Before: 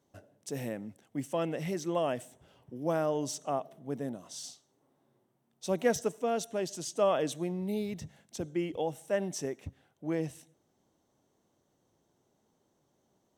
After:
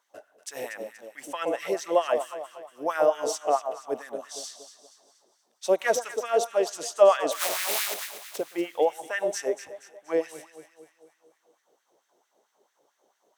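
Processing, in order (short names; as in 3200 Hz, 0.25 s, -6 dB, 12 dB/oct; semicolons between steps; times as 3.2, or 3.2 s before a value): 7.31–8.36 spectral contrast lowered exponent 0.18; echo with dull and thin repeats by turns 0.119 s, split 1100 Hz, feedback 67%, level -8 dB; LFO high-pass sine 4.5 Hz 430–1800 Hz; gain +4.5 dB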